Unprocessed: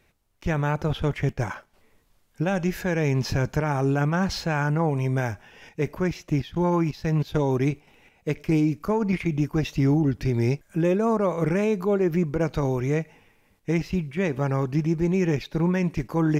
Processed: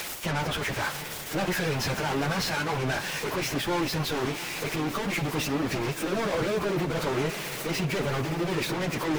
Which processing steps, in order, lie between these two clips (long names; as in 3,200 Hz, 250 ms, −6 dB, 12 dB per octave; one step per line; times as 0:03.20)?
spike at every zero crossing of −24.5 dBFS
mid-hump overdrive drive 25 dB, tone 2,400 Hz, clips at −14 dBFS
soft clipping −30 dBFS, distortion −7 dB
feedback delay with all-pass diffusion 1,173 ms, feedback 51%, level −13 dB
time stretch by phase vocoder 0.56×
level +6.5 dB